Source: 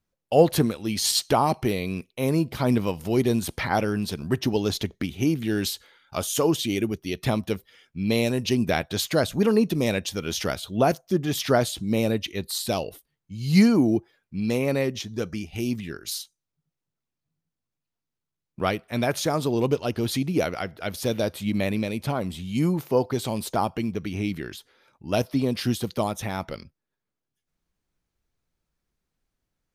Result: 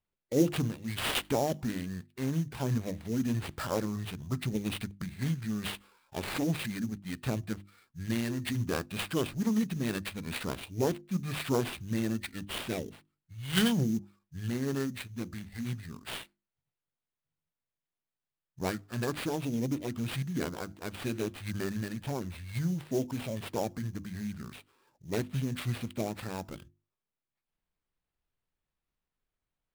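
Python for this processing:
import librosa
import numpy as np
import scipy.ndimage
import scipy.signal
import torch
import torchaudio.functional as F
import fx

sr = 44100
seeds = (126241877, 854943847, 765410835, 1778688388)

y = fx.formant_shift(x, sr, semitones=-6)
y = fx.sample_hold(y, sr, seeds[0], rate_hz=6300.0, jitter_pct=20)
y = fx.hum_notches(y, sr, base_hz=50, count=7)
y = F.gain(torch.from_numpy(y), -7.5).numpy()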